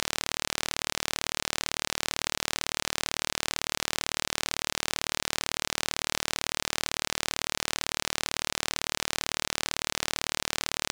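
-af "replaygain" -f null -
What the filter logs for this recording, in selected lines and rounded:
track_gain = +14.6 dB
track_peak = 0.372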